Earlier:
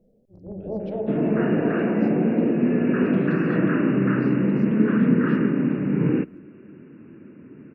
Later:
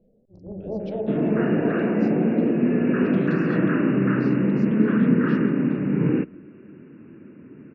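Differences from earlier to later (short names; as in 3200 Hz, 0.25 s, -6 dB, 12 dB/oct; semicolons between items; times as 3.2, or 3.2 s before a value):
speech: remove LPF 2300 Hz 6 dB/oct; first sound: add LPF 1200 Hz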